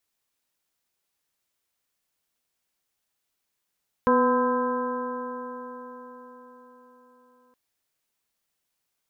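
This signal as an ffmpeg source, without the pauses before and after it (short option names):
-f lavfi -i "aevalsrc='0.0794*pow(10,-3*t/4.81)*sin(2*PI*247.48*t)+0.1*pow(10,-3*t/4.81)*sin(2*PI*497.84*t)+0.0141*pow(10,-3*t/4.81)*sin(2*PI*753.89*t)+0.1*pow(10,-3*t/4.81)*sin(2*PI*1018.36*t)+0.0282*pow(10,-3*t/4.81)*sin(2*PI*1293.81*t)+0.0266*pow(10,-3*t/4.81)*sin(2*PI*1582.62*t)':d=3.47:s=44100"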